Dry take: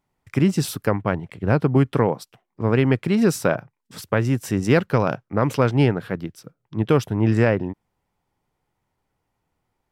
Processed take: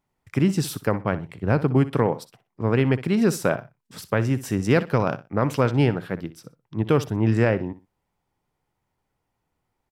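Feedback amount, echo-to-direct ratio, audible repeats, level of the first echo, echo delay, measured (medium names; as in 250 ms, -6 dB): 22%, -15.5 dB, 2, -15.5 dB, 62 ms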